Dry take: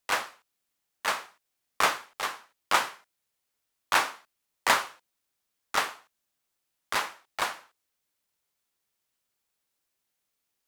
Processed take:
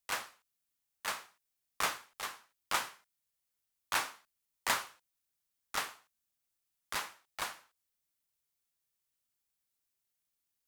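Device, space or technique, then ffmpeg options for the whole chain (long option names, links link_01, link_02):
smiley-face EQ: -af "lowshelf=frequency=190:gain=6.5,equalizer=frequency=470:width_type=o:width=2.4:gain=-3,highshelf=frequency=6100:gain=7,volume=-9dB"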